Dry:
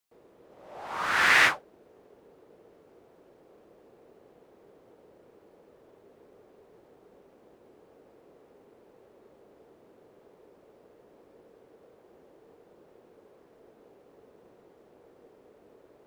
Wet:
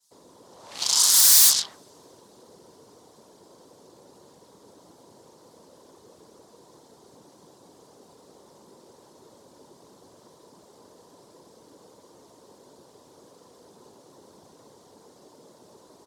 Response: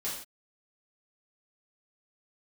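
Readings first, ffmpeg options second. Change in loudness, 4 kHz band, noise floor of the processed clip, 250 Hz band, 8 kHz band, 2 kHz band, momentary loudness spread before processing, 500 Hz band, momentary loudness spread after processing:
+8.0 dB, +11.0 dB, -55 dBFS, -0.5 dB, +24.0 dB, -15.0 dB, 20 LU, -3.0 dB, 12 LU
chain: -filter_complex "[0:a]asplit=2[a][b];[b]adelay=127,lowpass=f=1.1k:p=1,volume=-12.5dB,asplit=2[c][d];[d]adelay=127,lowpass=f=1.1k:p=1,volume=0.18[e];[a][c][e]amix=inputs=3:normalize=0,afftfilt=real='hypot(re,im)*cos(2*PI*random(0))':imag='hypot(re,im)*sin(2*PI*random(1))':win_size=512:overlap=0.75,acrossover=split=260|1100[f][g][h];[f]acontrast=42[i];[i][g][h]amix=inputs=3:normalize=0,lowpass=8k,equalizer=f=980:t=o:w=0.38:g=11,asoftclip=type=tanh:threshold=-23.5dB,alimiter=level_in=8.5dB:limit=-24dB:level=0:latency=1:release=155,volume=-8.5dB,aeval=exprs='0.0251*(cos(1*acos(clip(val(0)/0.0251,-1,1)))-cos(1*PI/2))+0.0126*(cos(7*acos(clip(val(0)/0.0251,-1,1)))-cos(7*PI/2))':c=same,highpass=93,aexciter=amount=10.1:drive=5.1:freq=3.7k,bandreject=f=324.5:t=h:w=4,bandreject=f=649:t=h:w=4,bandreject=f=973.5:t=h:w=4,bandreject=f=1.298k:t=h:w=4,bandreject=f=1.6225k:t=h:w=4,bandreject=f=1.947k:t=h:w=4,adynamicequalizer=threshold=0.00355:dfrequency=2100:dqfactor=0.7:tfrequency=2100:tqfactor=0.7:attack=5:release=100:ratio=0.375:range=3:mode=boostabove:tftype=highshelf"

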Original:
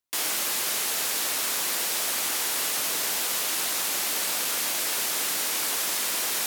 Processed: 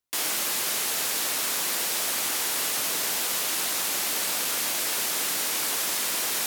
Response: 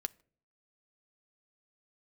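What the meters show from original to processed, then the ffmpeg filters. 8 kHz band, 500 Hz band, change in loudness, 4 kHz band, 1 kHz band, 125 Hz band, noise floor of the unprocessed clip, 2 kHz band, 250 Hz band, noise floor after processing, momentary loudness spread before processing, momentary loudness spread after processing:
0.0 dB, +0.5 dB, 0.0 dB, 0.0 dB, 0.0 dB, +2.5 dB, -28 dBFS, 0.0 dB, +1.5 dB, -28 dBFS, 0 LU, 0 LU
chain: -af "lowshelf=f=220:g=3.5"

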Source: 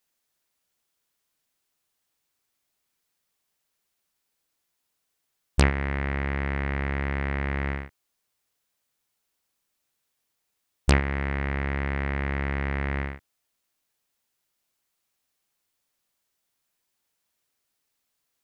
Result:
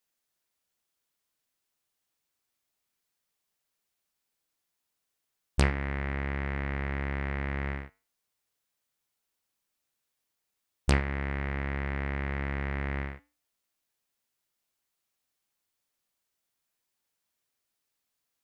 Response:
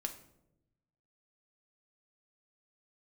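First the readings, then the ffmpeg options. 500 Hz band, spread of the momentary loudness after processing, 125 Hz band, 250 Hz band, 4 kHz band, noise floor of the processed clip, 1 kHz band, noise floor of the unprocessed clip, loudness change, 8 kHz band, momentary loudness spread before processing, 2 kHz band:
-4.5 dB, 8 LU, -4.5 dB, -4.5 dB, -4.5 dB, -83 dBFS, -4.5 dB, -79 dBFS, -4.5 dB, -4.5 dB, 8 LU, -4.5 dB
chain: -af "flanger=delay=8.4:depth=1.4:regen=-83:speed=1.2:shape=triangular"

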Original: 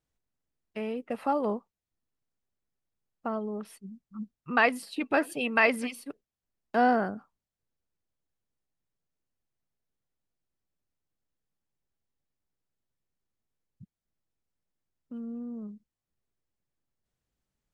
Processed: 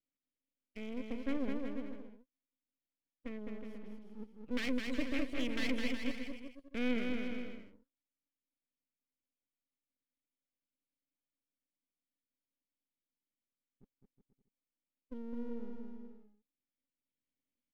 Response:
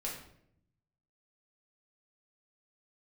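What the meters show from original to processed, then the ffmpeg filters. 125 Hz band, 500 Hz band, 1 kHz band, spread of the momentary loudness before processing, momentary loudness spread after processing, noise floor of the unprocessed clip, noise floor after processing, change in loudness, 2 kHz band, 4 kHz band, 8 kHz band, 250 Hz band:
-7.0 dB, -12.0 dB, -23.5 dB, 20 LU, 16 LU, under -85 dBFS, under -85 dBFS, -11.0 dB, -13.0 dB, -3.0 dB, -9.5 dB, -4.0 dB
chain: -filter_complex "[0:a]aeval=exprs='(tanh(20*val(0)+0.8)-tanh(0.8))/20':c=same,asplit=3[a][b][c];[a]bandpass=f=270:t=q:w=8,volume=0dB[d];[b]bandpass=f=2.29k:t=q:w=8,volume=-6dB[e];[c]bandpass=f=3.01k:t=q:w=8,volume=-9dB[f];[d][e][f]amix=inputs=3:normalize=0,aeval=exprs='max(val(0),0)':c=same,asplit=2[g][h];[h]aecho=0:1:210|367.5|485.6|574.2|640.7:0.631|0.398|0.251|0.158|0.1[i];[g][i]amix=inputs=2:normalize=0,volume=10.5dB"

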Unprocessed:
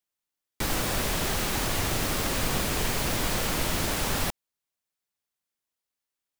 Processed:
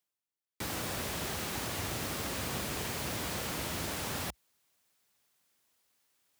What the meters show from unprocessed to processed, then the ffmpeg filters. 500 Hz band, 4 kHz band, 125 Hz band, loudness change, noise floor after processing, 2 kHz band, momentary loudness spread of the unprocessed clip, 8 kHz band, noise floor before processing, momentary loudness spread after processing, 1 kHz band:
-8.0 dB, -8.0 dB, -8.5 dB, -8.0 dB, under -85 dBFS, -8.0 dB, 2 LU, -8.0 dB, under -85 dBFS, 2 LU, -8.0 dB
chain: -af "highpass=f=60:w=0.5412,highpass=f=60:w=1.3066,areverse,acompressor=mode=upward:threshold=-48dB:ratio=2.5,areverse,volume=-8dB"

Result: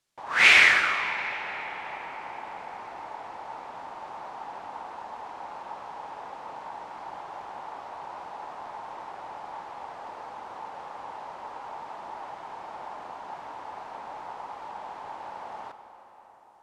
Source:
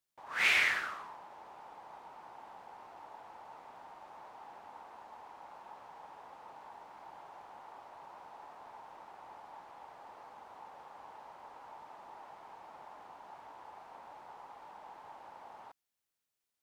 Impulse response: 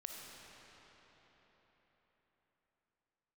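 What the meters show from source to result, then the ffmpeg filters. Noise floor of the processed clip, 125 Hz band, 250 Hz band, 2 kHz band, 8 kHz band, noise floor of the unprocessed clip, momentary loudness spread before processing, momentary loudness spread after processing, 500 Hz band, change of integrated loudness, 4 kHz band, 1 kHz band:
-51 dBFS, +12.0 dB, +12.0 dB, +12.0 dB, n/a, under -85 dBFS, 21 LU, 14 LU, +12.0 dB, +8.5 dB, +12.0 dB, +12.0 dB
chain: -filter_complex "[0:a]lowpass=8.7k,asplit=2[a][b];[1:a]atrim=start_sample=2205,asetrate=40131,aresample=44100[c];[b][c]afir=irnorm=-1:irlink=0,volume=-1dB[d];[a][d]amix=inputs=2:normalize=0,volume=8dB"

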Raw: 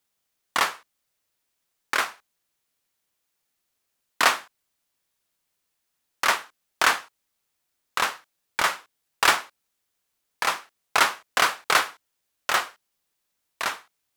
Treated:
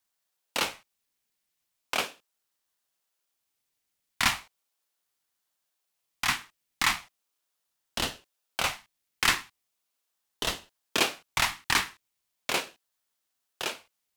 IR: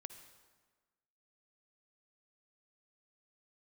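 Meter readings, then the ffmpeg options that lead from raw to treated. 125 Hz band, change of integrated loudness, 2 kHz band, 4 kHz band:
+6.5 dB, -5.0 dB, -6.0 dB, -2.0 dB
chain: -af "asuperstop=centerf=970:order=4:qfactor=1.3,aeval=exprs='val(0)*sin(2*PI*840*n/s+840*0.6/0.38*sin(2*PI*0.38*n/s))':c=same"

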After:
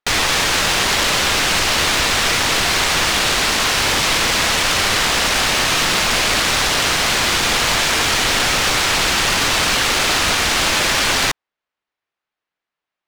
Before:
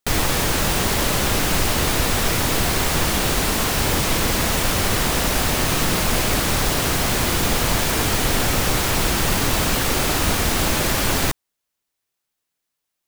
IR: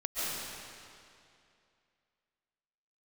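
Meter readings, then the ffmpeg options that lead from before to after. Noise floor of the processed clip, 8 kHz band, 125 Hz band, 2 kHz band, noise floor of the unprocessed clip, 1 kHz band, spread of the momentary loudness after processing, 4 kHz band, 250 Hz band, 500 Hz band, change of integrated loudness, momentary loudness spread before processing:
under -85 dBFS, +4.0 dB, -5.5 dB, +7.5 dB, -80 dBFS, +4.5 dB, 0 LU, +8.0 dB, -3.0 dB, +0.5 dB, +4.5 dB, 0 LU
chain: -filter_complex "[0:a]tiltshelf=f=1.4k:g=-4,asplit=2[a][b];[b]highpass=f=720:p=1,volume=8dB,asoftclip=type=tanh:threshold=-5.5dB[c];[a][c]amix=inputs=2:normalize=0,lowpass=f=6.6k:p=1,volume=-6dB,adynamicsmooth=sensitivity=3.5:basefreq=1.8k,volume=3.5dB"

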